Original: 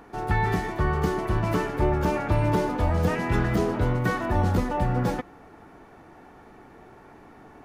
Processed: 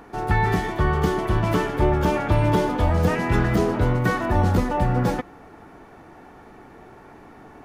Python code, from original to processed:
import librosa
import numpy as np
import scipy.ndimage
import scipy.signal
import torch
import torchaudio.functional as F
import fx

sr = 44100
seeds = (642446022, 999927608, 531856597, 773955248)

y = fx.peak_eq(x, sr, hz=3300.0, db=6.5, octaves=0.21, at=(0.56, 2.93))
y = F.gain(torch.from_numpy(y), 3.5).numpy()